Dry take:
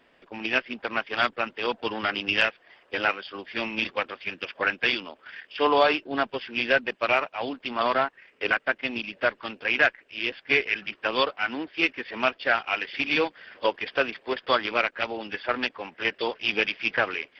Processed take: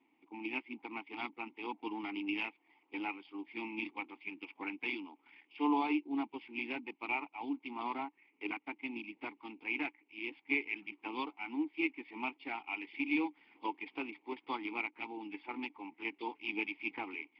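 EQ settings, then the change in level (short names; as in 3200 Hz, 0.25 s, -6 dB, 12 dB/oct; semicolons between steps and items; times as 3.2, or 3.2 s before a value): vowel filter u; +1.0 dB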